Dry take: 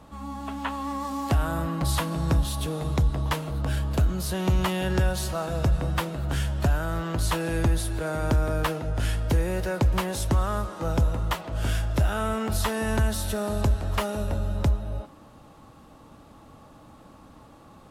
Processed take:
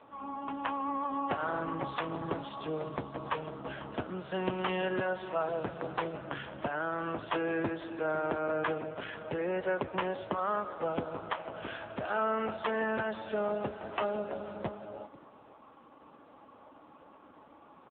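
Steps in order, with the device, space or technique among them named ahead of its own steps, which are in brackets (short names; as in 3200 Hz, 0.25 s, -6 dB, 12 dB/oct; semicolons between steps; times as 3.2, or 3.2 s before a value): dynamic EQ 6600 Hz, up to -7 dB, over -59 dBFS, Q 5.4; satellite phone (BPF 310–3000 Hz; echo 0.495 s -21.5 dB; AMR-NB 5.9 kbps 8000 Hz)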